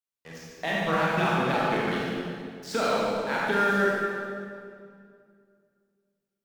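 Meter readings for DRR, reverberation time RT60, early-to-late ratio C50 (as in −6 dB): −6.0 dB, 2.3 s, −4.0 dB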